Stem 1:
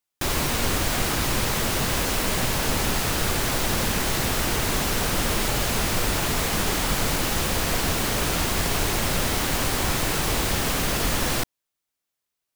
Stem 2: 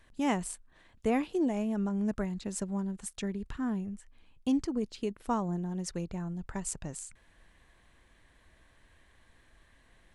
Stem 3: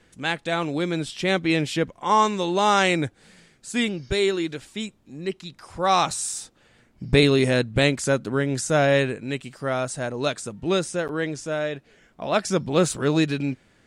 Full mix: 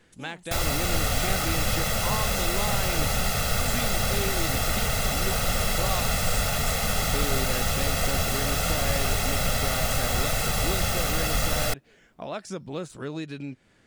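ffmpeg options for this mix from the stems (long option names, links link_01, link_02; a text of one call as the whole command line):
ffmpeg -i stem1.wav -i stem2.wav -i stem3.wav -filter_complex "[0:a]aecho=1:1:1.5:0.89,adelay=300,volume=-4.5dB[link_01];[1:a]highshelf=frequency=4700:gain=9,volume=-11dB[link_02];[2:a]deesser=0.55,volume=-2dB[link_03];[link_02][link_03]amix=inputs=2:normalize=0,acompressor=threshold=-34dB:ratio=3,volume=0dB[link_04];[link_01][link_04]amix=inputs=2:normalize=0" out.wav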